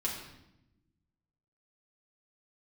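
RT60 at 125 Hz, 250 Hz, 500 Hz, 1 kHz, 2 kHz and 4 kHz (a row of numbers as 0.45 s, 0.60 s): 1.7 s, 1.5 s, 0.95 s, 0.80 s, 0.75 s, 0.75 s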